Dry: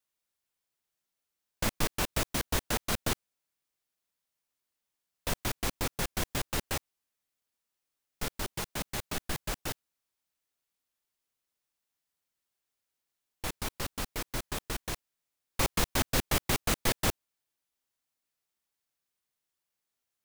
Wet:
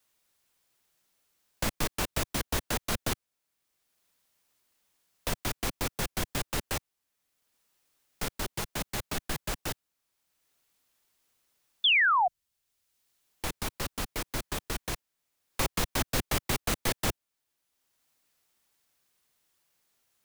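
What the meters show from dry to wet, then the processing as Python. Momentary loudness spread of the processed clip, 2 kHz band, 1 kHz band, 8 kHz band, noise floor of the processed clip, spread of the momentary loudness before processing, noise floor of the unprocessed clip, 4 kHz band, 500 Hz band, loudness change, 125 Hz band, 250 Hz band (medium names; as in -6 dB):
11 LU, +5.5 dB, +5.0 dB, 0.0 dB, under -85 dBFS, 11 LU, under -85 dBFS, +3.5 dB, +0.5 dB, +2.0 dB, 0.0 dB, 0.0 dB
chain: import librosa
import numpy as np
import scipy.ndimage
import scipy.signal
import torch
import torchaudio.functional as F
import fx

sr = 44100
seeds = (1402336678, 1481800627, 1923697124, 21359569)

y = fx.spec_paint(x, sr, seeds[0], shape='fall', start_s=11.84, length_s=0.44, low_hz=680.0, high_hz=3600.0, level_db=-20.0)
y = fx.band_squash(y, sr, depth_pct=40)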